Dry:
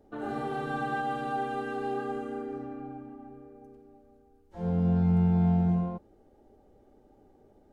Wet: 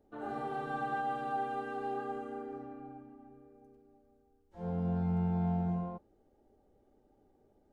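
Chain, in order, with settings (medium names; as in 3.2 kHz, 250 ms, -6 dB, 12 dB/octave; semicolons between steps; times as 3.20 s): dynamic bell 860 Hz, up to +6 dB, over -45 dBFS, Q 0.75; trim -8.5 dB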